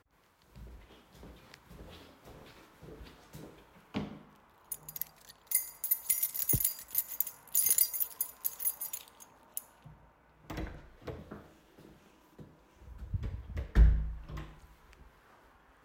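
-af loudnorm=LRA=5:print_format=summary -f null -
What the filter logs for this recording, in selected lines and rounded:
Input Integrated:    -32.2 LUFS
Input True Peak:     -10.1 dBTP
Input LRA:            19.6 LU
Input Threshold:     -45.7 LUFS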